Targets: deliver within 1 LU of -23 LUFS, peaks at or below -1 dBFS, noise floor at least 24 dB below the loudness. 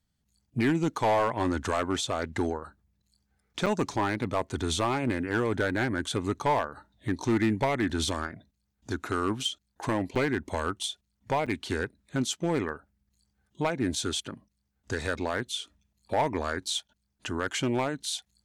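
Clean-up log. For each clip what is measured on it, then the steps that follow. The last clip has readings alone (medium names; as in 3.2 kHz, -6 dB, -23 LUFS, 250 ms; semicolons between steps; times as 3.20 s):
clipped samples 0.9%; clipping level -19.0 dBFS; dropouts 3; longest dropout 6.1 ms; loudness -30.0 LUFS; peak level -19.0 dBFS; loudness target -23.0 LUFS
-> clip repair -19 dBFS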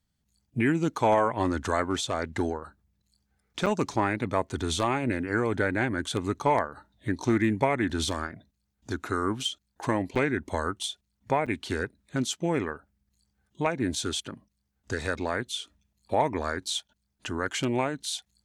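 clipped samples 0.0%; dropouts 3; longest dropout 6.1 ms
-> interpolate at 3.66/10.15/11.46 s, 6.1 ms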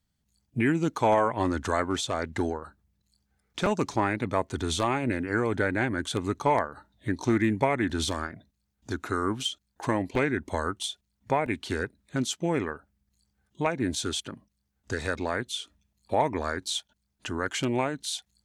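dropouts 0; loudness -29.0 LUFS; peak level -10.0 dBFS; loudness target -23.0 LUFS
-> trim +6 dB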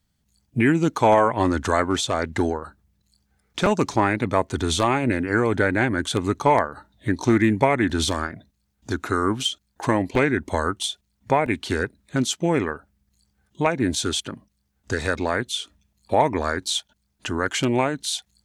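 loudness -23.0 LUFS; peak level -4.0 dBFS; noise floor -72 dBFS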